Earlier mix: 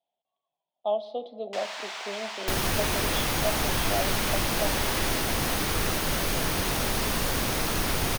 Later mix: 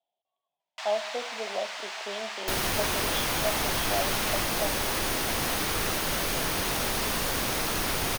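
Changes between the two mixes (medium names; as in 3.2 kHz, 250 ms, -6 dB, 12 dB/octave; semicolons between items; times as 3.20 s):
first sound: entry -0.75 s; master: add bass shelf 260 Hz -6 dB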